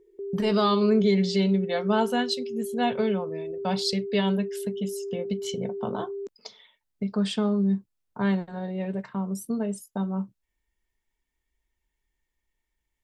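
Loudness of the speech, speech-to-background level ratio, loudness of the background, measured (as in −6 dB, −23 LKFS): −27.5 LKFS, 7.0 dB, −34.5 LKFS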